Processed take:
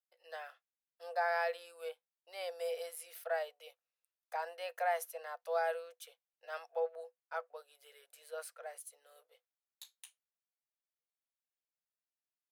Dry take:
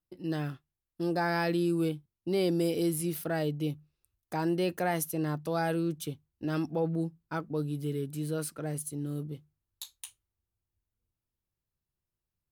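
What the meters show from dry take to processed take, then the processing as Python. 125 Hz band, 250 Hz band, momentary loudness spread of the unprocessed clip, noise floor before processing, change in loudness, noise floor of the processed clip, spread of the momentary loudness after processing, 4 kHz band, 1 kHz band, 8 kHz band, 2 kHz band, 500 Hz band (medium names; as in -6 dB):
under -40 dB, under -40 dB, 13 LU, under -85 dBFS, -8.0 dB, under -85 dBFS, 22 LU, -9.0 dB, -2.5 dB, -11.0 dB, -3.0 dB, -6.5 dB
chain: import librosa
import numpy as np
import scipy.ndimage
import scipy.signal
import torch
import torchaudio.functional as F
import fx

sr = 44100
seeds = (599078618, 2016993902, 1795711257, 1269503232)

y = scipy.signal.sosfilt(scipy.signal.cheby1(6, 6, 480.0, 'highpass', fs=sr, output='sos'), x)
y = fx.dynamic_eq(y, sr, hz=900.0, q=0.82, threshold_db=-48.0, ratio=4.0, max_db=7)
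y = y * librosa.db_to_amplitude(-5.5)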